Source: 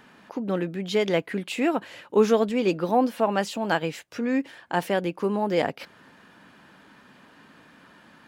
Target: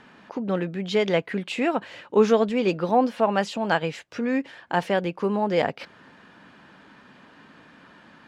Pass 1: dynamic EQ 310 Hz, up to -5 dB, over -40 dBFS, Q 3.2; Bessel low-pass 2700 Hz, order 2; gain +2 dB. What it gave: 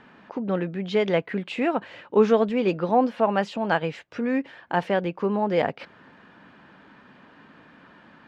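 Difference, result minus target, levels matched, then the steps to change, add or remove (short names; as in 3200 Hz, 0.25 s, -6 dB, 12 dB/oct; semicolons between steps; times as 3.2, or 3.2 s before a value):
4000 Hz band -3.5 dB
change: Bessel low-pass 5500 Hz, order 2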